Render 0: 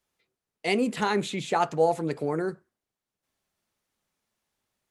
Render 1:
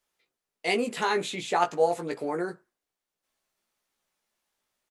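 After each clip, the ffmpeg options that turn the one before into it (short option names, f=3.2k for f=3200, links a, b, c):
-filter_complex "[0:a]equalizer=f=96:t=o:w=2.7:g=-11,asplit=2[a][b];[b]adelay=17,volume=-5dB[c];[a][c]amix=inputs=2:normalize=0"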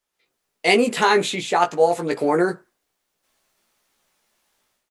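-af "dynaudnorm=f=110:g=5:m=13dB,volume=-1dB"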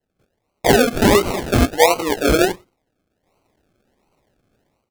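-af "highpass=f=220:w=0.5412,highpass=f=220:w=1.3066,acrusher=samples=36:mix=1:aa=0.000001:lfo=1:lforange=21.6:lforate=1.4,volume=4dB"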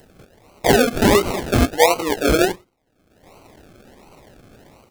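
-af "acompressor=mode=upward:threshold=-29dB:ratio=2.5,volume=-1dB"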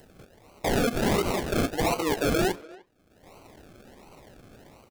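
-filter_complex "[0:a]asplit=2[a][b];[b]adelay=300,highpass=300,lowpass=3.4k,asoftclip=type=hard:threshold=-11dB,volume=-23dB[c];[a][c]amix=inputs=2:normalize=0,aeval=exprs='0.178*(abs(mod(val(0)/0.178+3,4)-2)-1)':c=same,volume=-3.5dB"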